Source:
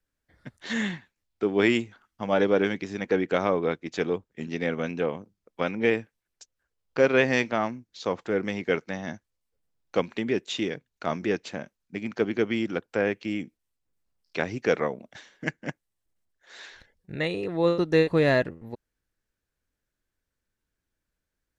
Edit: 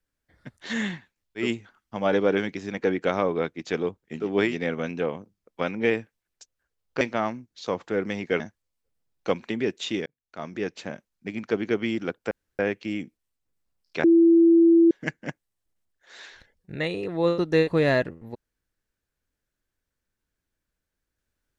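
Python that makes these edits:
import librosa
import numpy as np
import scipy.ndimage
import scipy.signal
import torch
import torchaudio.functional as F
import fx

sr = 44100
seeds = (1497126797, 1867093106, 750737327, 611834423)

y = fx.edit(x, sr, fx.move(start_s=1.43, length_s=0.27, to_s=4.49, crossfade_s=0.16),
    fx.cut(start_s=7.01, length_s=0.38),
    fx.cut(start_s=8.78, length_s=0.3),
    fx.fade_in_span(start_s=10.74, length_s=0.83),
    fx.insert_room_tone(at_s=12.99, length_s=0.28),
    fx.bleep(start_s=14.44, length_s=0.87, hz=334.0, db=-12.5), tone=tone)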